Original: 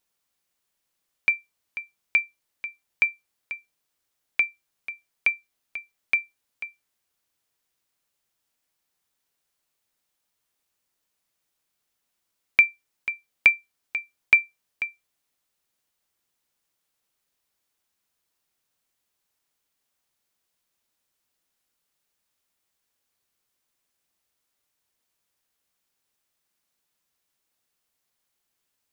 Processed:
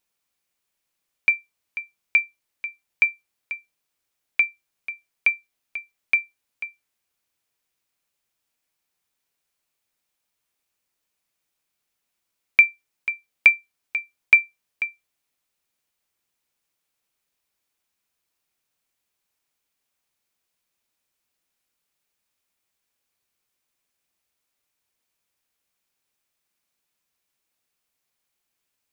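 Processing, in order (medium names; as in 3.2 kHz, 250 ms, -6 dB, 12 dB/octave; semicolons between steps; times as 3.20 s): peaking EQ 2.4 kHz +4 dB 0.28 oct; trim -1 dB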